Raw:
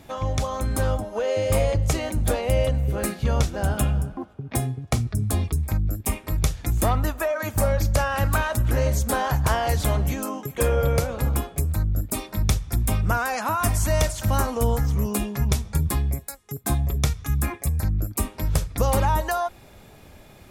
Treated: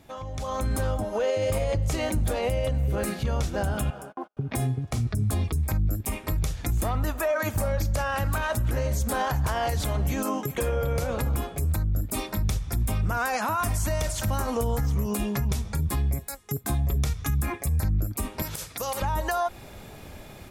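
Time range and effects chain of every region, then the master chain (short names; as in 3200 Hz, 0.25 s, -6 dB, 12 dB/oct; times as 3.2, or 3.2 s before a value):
3.9–4.37 HPF 510 Hz + high shelf 2200 Hz -6.5 dB + gate -49 dBFS, range -35 dB
18.42–19.02 HPF 200 Hz 6 dB/oct + tilt +2.5 dB/oct + compressor 10:1, threshold -29 dBFS
whole clip: compressor 2.5:1, threshold -26 dBFS; limiter -22.5 dBFS; AGC gain up to 11 dB; gain -6.5 dB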